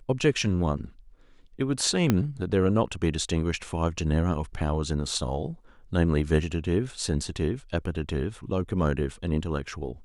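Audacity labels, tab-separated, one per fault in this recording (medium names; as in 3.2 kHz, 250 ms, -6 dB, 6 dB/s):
2.100000	2.100000	pop -8 dBFS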